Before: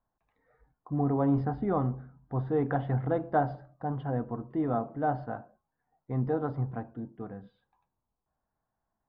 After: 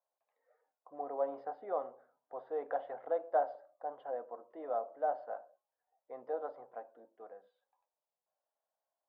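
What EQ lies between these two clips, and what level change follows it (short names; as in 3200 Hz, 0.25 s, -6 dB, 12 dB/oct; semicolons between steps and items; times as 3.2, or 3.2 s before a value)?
ladder high-pass 510 Hz, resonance 65%; 0.0 dB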